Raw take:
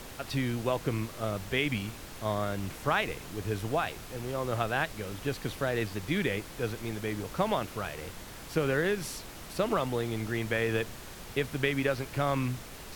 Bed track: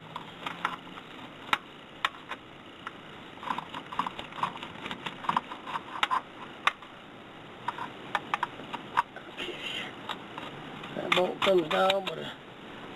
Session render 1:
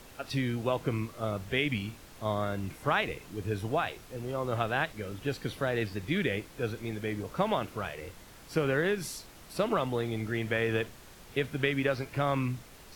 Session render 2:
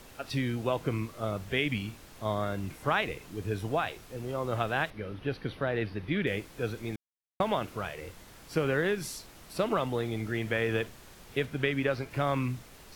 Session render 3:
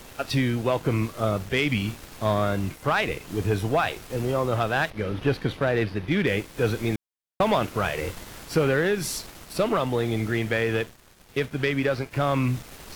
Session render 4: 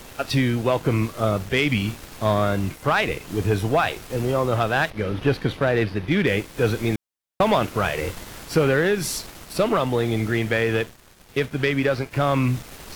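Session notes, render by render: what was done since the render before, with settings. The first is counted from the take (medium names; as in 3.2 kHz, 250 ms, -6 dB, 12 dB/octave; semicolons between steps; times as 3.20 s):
noise print and reduce 7 dB
4.90–6.27 s: boxcar filter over 6 samples; 6.96–7.40 s: mute; 11.45–12.11 s: treble shelf 5.2 kHz -4.5 dB
gain riding within 5 dB 0.5 s; waveshaping leveller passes 2
trim +3 dB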